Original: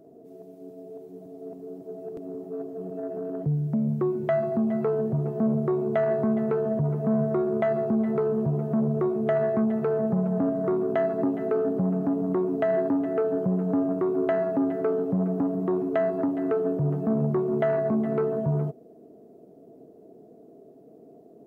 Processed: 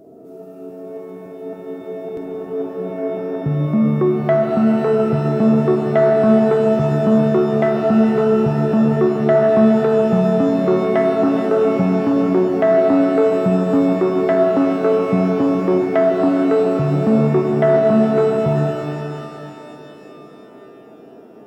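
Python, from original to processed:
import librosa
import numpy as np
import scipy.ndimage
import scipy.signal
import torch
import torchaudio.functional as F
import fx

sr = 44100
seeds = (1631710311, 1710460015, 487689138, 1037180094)

y = fx.rev_shimmer(x, sr, seeds[0], rt60_s=2.9, semitones=12, shimmer_db=-8, drr_db=4.5)
y = F.gain(torch.from_numpy(y), 7.5).numpy()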